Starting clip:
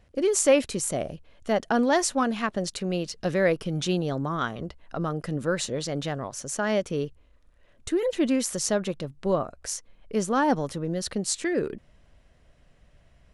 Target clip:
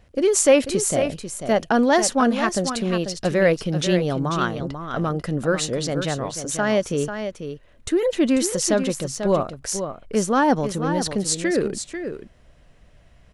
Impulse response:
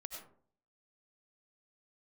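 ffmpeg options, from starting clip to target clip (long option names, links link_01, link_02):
-af "acontrast=23,aecho=1:1:492:0.376"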